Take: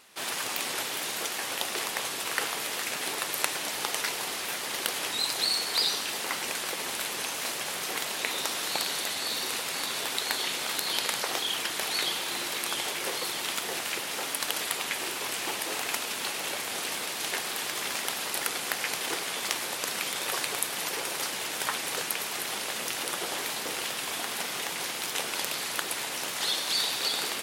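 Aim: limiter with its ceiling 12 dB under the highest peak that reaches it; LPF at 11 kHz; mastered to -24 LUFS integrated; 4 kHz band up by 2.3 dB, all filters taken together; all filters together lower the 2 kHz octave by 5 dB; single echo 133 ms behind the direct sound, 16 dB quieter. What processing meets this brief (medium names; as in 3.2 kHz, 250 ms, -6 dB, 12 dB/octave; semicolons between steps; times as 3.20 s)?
low-pass 11 kHz; peaking EQ 2 kHz -8 dB; peaking EQ 4 kHz +5 dB; peak limiter -18 dBFS; delay 133 ms -16 dB; trim +6 dB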